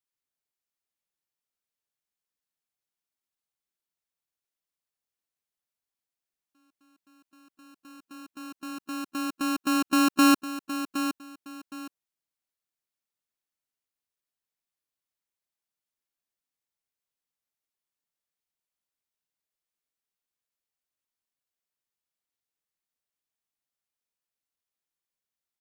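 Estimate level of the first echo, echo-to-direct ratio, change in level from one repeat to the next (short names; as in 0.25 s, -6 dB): -10.0 dB, -9.5 dB, -11.5 dB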